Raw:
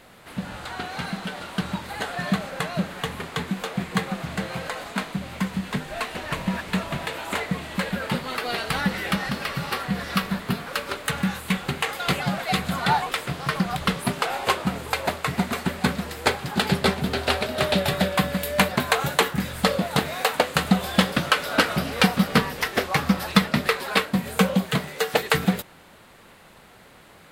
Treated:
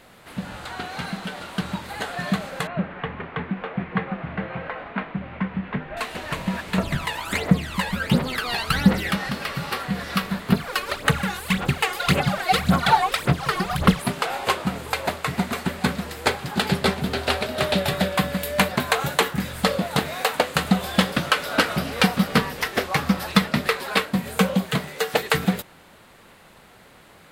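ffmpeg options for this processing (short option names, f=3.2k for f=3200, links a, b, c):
-filter_complex "[0:a]asettb=1/sr,asplit=3[a][b][c];[a]atrim=end=2.674[d];[b]atrim=start=2.67:end=5.97,asetpts=PTS-STARTPTS,afade=t=in:d=0.004:c=qsin,afade=t=out:st=3.296:d=0.004:c=qsin,lowpass=f=2.5k:w=0.5412,lowpass=f=2.5k:w=1.3066[e];[c]atrim=start=5.966[f];[d][e]acrossfade=d=0.004:c1=hsin:c2=qsin[g];[g][f]acrossfade=d=0.004:c1=qsin:c2=hsin,asettb=1/sr,asplit=3[h][i][j];[h]atrim=end=6.784[k];[i]atrim=start=6.78:end=9.11,asetpts=PTS-STARTPTS,afade=t=in:d=0.004:c=qsin,afade=t=out:st=2.326:d=0.004:c=qsin,aphaser=in_gain=1:out_gain=1:delay=1.2:decay=0.71:speed=1.4:type=triangular[l];[j]atrim=start=9.106[m];[k][l]acrossfade=d=0.004:c1=hsin:c2=qsin[n];[n][m]acrossfade=d=0.004:c1=qsin:c2=hsin,asettb=1/sr,asplit=3[o][p][q];[o]atrim=end=10.524[r];[p]atrim=start=10.52:end=14.02,asetpts=PTS-STARTPTS,afade=t=in:d=0.004:c=qsin,afade=t=out:st=3.496:d=0.004:c=qsin,aphaser=in_gain=1:out_gain=1:delay=2.8:decay=0.7:speed=1.8:type=sinusoidal[s];[q]atrim=start=14.016[t];[r][s]acrossfade=d=0.004:c1=hsin:c2=qsin[u];[u][t]acrossfade=d=0.004:c1=qsin:c2=hsin"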